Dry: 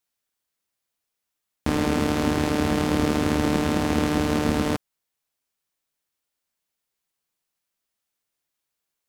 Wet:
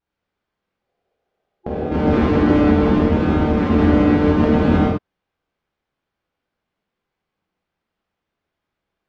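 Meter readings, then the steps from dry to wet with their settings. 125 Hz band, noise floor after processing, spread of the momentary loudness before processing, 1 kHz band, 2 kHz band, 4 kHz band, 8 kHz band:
+8.0 dB, -82 dBFS, 4 LU, +4.5 dB, +2.5 dB, -3.5 dB, under -15 dB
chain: spectral gain 0.81–1.91, 350–830 Hz +10 dB; negative-ratio compressor -24 dBFS, ratio -0.5; vibrato 0.7 Hz 22 cents; tape spacing loss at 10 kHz 41 dB; non-linear reverb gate 0.23 s flat, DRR -7.5 dB; gain +3.5 dB

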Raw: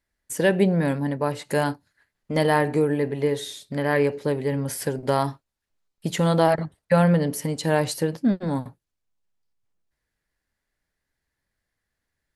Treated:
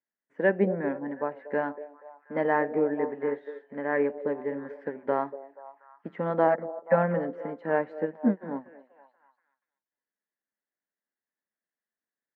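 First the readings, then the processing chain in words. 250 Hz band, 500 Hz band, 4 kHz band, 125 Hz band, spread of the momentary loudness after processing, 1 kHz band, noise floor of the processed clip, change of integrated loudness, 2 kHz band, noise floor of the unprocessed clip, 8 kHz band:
-7.0 dB, -4.0 dB, under -25 dB, -14.0 dB, 15 LU, -4.0 dB, under -85 dBFS, -5.5 dB, -4.5 dB, -82 dBFS, under -40 dB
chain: Chebyshev band-pass 210–1900 Hz, order 3; delay with a stepping band-pass 0.24 s, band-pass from 480 Hz, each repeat 0.7 oct, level -7 dB; upward expander 1.5:1, over -37 dBFS; gain -1.5 dB

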